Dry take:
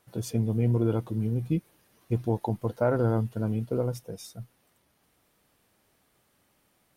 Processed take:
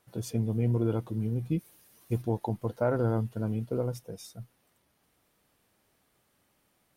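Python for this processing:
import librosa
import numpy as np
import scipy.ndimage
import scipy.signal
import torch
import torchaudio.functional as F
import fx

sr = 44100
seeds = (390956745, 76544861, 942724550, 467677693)

y = fx.high_shelf(x, sr, hz=fx.line((1.58, 3700.0), (2.21, 6000.0)), db=12.0, at=(1.58, 2.21), fade=0.02)
y = F.gain(torch.from_numpy(y), -2.5).numpy()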